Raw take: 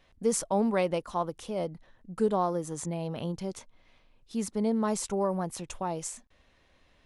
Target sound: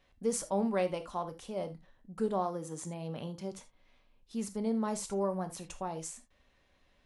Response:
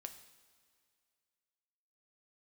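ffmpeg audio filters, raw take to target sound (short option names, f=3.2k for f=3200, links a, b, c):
-filter_complex "[0:a]asettb=1/sr,asplit=3[a][b][c];[a]atrim=end=2.394[d];[b]atrim=start=2.39:end=3.52,asetpts=PTS-STARTPTS,afade=t=in:d=0.004:c=qsin,afade=t=out:st=1.126:d=0.004:c=qsin,highpass=100[e];[c]atrim=start=3.516[f];[d][e]acrossfade=d=0.004:c1=hsin:c2=qsin[g];[g][f]acrossfade=d=0.004:c1=qsin:c2=hsin[h];[1:a]atrim=start_sample=2205,atrim=end_sample=3969[i];[h][i]afir=irnorm=-1:irlink=0"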